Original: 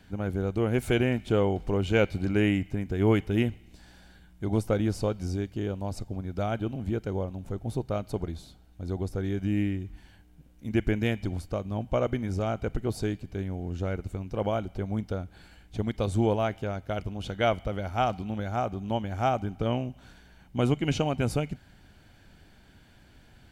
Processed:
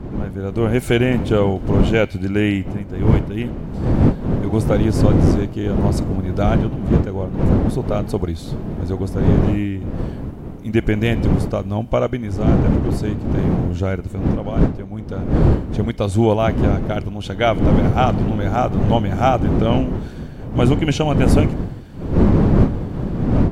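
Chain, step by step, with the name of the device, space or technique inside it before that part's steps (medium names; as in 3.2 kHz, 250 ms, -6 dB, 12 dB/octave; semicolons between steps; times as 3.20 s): smartphone video outdoors (wind noise 220 Hz -25 dBFS; level rider gain up to 15.5 dB; trim -1 dB; AAC 96 kbps 44.1 kHz)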